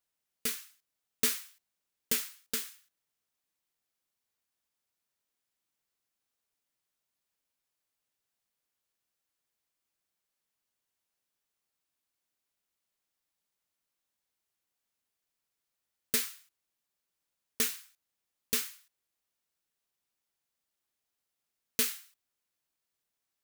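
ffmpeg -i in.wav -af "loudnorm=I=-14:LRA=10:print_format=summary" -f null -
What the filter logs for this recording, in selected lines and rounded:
Input Integrated:    -32.7 LUFS
Input True Peak:     -12.0 dBTP
Input LRA:             4.3 LU
Input Threshold:     -44.1 LUFS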